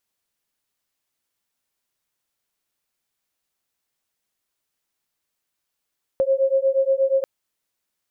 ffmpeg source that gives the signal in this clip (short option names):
-f lavfi -i "aevalsrc='0.106*(sin(2*PI*534*t)+sin(2*PI*542.4*t))':d=1.04:s=44100"